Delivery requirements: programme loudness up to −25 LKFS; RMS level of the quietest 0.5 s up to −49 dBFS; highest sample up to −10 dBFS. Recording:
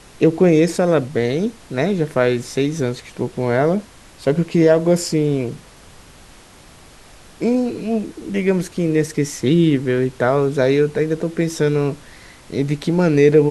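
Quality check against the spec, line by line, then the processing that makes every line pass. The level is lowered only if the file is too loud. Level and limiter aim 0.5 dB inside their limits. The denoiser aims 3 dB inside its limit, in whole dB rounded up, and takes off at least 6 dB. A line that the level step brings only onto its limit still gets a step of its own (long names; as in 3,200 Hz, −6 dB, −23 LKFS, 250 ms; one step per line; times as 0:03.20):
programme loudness −18.5 LKFS: out of spec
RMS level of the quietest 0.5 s −44 dBFS: out of spec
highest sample −2.0 dBFS: out of spec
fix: level −7 dB
brickwall limiter −10.5 dBFS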